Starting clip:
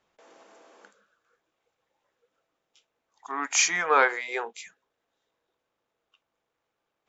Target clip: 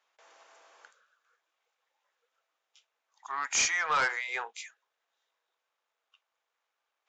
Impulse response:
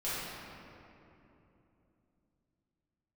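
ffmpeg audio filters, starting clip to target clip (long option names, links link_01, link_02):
-af "highpass=860,aresample=16000,asoftclip=type=tanh:threshold=-21.5dB,aresample=44100"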